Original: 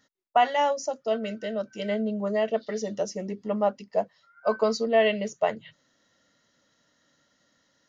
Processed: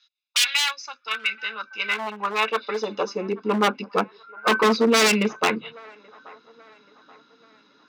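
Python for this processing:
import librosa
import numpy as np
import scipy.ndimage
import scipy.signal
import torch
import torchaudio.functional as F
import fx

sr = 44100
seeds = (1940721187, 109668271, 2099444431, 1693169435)

p1 = fx.self_delay(x, sr, depth_ms=0.14)
p2 = scipy.signal.sosfilt(scipy.signal.butter(4, 4300.0, 'lowpass', fs=sr, output='sos'), p1)
p3 = p2 + 0.96 * np.pad(p2, (int(0.8 * sr / 1000.0), 0))[:len(p2)]
p4 = fx.dynamic_eq(p3, sr, hz=2100.0, q=2.0, threshold_db=-46.0, ratio=4.0, max_db=8)
p5 = 10.0 ** (-21.5 / 20.0) * (np.abs((p4 / 10.0 ** (-21.5 / 20.0) + 3.0) % 4.0 - 2.0) - 1.0)
p6 = fx.filter_sweep_highpass(p5, sr, from_hz=3300.0, to_hz=290.0, start_s=0.08, end_s=3.88, q=1.2)
p7 = p6 + fx.echo_wet_bandpass(p6, sr, ms=831, feedback_pct=43, hz=930.0, wet_db=-21.5, dry=0)
y = p7 * 10.0 ** (9.0 / 20.0)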